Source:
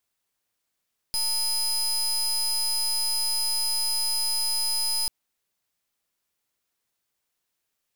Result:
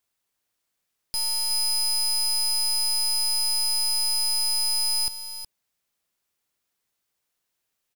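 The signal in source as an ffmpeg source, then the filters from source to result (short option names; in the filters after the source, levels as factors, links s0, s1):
-f lavfi -i "aevalsrc='0.0531*(2*lt(mod(5000*t,1),0.28)-1)':d=3.94:s=44100"
-af "aecho=1:1:367:0.316"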